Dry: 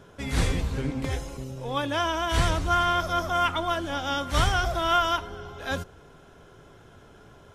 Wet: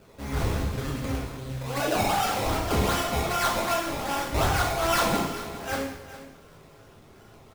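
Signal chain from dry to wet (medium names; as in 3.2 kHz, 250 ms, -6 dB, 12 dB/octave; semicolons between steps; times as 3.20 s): 1.80–2.46 s: formants replaced by sine waves; flange 0.48 Hz, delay 6 ms, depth 2.8 ms, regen +77%; decimation with a swept rate 20×, swing 100% 2.6 Hz; on a send: delay 408 ms -14.5 dB; on the sum: plate-style reverb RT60 0.95 s, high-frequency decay 0.95×, DRR -2.5 dB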